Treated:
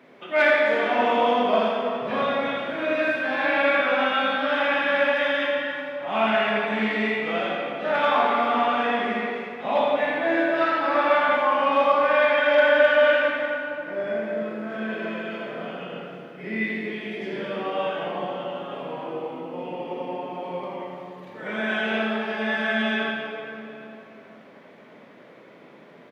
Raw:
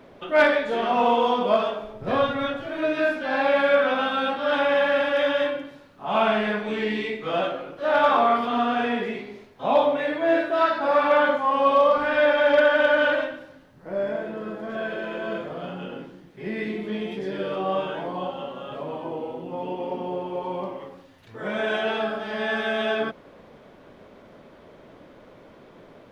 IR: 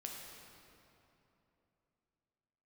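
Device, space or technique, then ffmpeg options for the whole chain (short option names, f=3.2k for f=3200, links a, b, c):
PA in a hall: -filter_complex "[0:a]highpass=f=140:w=0.5412,highpass=f=140:w=1.3066,equalizer=f=2.1k:t=o:w=0.8:g=8,aecho=1:1:82:0.473[a];[1:a]atrim=start_sample=2205[b];[a][b]afir=irnorm=-1:irlink=0"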